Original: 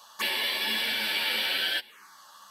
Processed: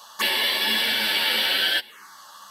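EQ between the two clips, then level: notch 2400 Hz, Q 11; +6.5 dB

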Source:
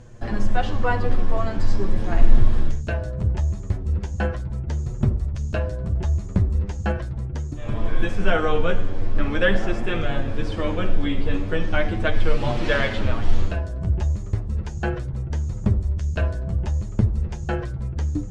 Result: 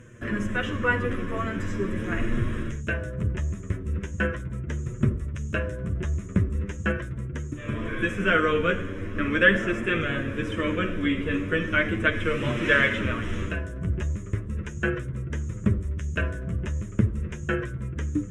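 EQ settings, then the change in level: HPF 270 Hz 6 dB/oct; fixed phaser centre 1900 Hz, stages 4; +5.5 dB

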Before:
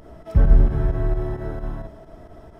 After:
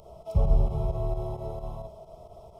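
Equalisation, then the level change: Butterworth band-stop 1700 Hz, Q 1.8; low shelf 84 Hz -10.5 dB; fixed phaser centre 680 Hz, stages 4; 0.0 dB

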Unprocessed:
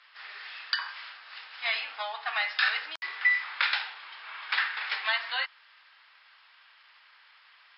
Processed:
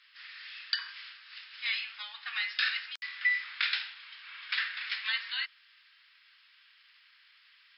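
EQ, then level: Bessel high-pass 2200 Hz, order 4; 0.0 dB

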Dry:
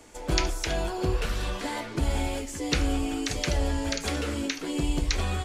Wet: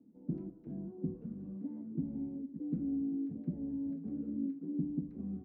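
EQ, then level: Butterworth band-pass 210 Hz, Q 2.1; +1.0 dB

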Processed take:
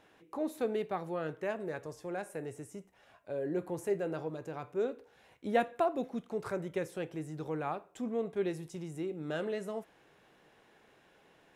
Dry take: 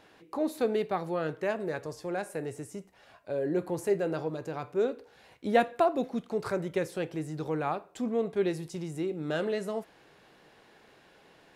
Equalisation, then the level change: bell 4500 Hz -7 dB 0.33 oct; -5.0 dB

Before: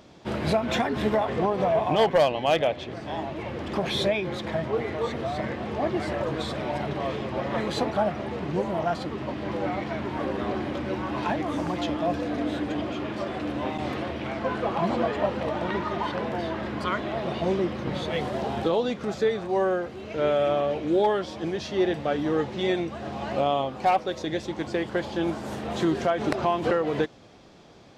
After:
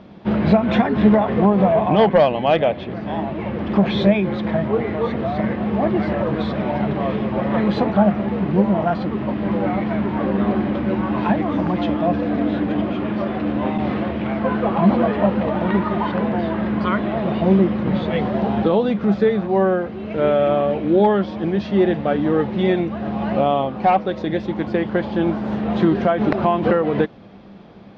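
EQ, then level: air absorption 300 m; bell 200 Hz +13.5 dB 0.23 oct; +7.0 dB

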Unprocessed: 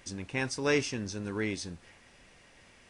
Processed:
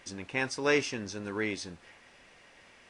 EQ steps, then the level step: low shelf 240 Hz -11 dB; high shelf 5700 Hz -9 dB; +3.5 dB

